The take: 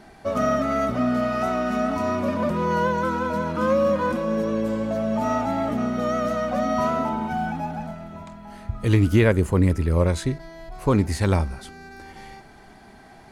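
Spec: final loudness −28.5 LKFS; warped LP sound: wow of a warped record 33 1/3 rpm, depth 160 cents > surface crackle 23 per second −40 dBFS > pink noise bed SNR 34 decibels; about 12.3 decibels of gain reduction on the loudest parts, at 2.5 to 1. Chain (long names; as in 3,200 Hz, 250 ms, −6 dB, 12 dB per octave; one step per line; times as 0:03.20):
downward compressor 2.5 to 1, threshold −33 dBFS
wow of a warped record 33 1/3 rpm, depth 160 cents
surface crackle 23 per second −40 dBFS
pink noise bed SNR 34 dB
level +4.5 dB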